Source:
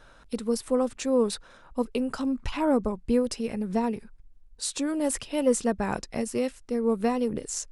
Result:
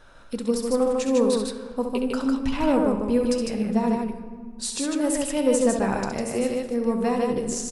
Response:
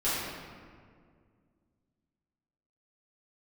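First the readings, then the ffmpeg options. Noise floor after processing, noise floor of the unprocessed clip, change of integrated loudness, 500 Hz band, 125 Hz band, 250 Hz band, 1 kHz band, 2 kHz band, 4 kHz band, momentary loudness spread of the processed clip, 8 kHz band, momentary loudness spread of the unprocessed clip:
-41 dBFS, -54 dBFS, +4.0 dB, +4.0 dB, +4.5 dB, +4.0 dB, +3.5 dB, +3.5 dB, +3.5 dB, 9 LU, +3.0 dB, 7 LU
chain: -filter_complex "[0:a]aecho=1:1:67.06|151.6:0.447|0.708,asplit=2[a][b];[1:a]atrim=start_sample=2205[c];[b][c]afir=irnorm=-1:irlink=0,volume=-19dB[d];[a][d]amix=inputs=2:normalize=0"

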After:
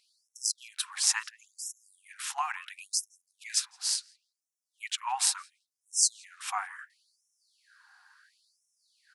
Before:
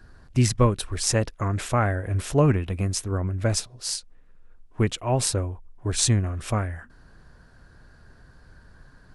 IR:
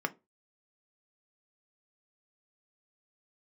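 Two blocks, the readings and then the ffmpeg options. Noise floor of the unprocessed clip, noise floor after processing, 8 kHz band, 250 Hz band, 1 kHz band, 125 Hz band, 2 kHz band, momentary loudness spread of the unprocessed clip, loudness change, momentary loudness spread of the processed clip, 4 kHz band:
-53 dBFS, under -85 dBFS, 0.0 dB, under -40 dB, -5.5 dB, under -40 dB, -4.5 dB, 9 LU, -5.5 dB, 16 LU, -1.0 dB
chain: -filter_complex "[0:a]asplit=2[a][b];[b]adelay=167,lowpass=f=1.7k:p=1,volume=-19.5dB,asplit=2[c][d];[d]adelay=167,lowpass=f=1.7k:p=1,volume=0.25[e];[a][c][e]amix=inputs=3:normalize=0,afftfilt=real='re*gte(b*sr/1024,700*pow(5400/700,0.5+0.5*sin(2*PI*0.72*pts/sr)))':imag='im*gte(b*sr/1024,700*pow(5400/700,0.5+0.5*sin(2*PI*0.72*pts/sr)))':win_size=1024:overlap=0.75"

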